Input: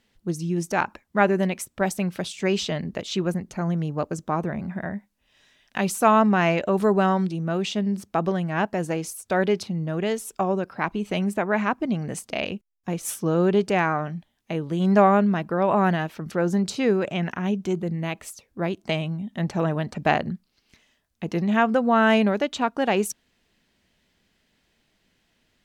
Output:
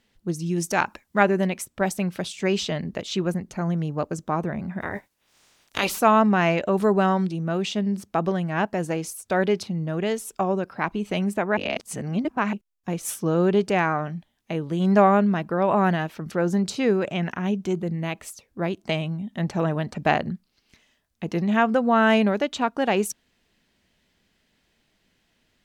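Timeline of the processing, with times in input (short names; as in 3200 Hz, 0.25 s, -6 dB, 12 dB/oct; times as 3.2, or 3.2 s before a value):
0.46–1.23 high shelf 2900 Hz +7.5 dB
4.8–5.99 spectral limiter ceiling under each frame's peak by 23 dB
11.57–12.53 reverse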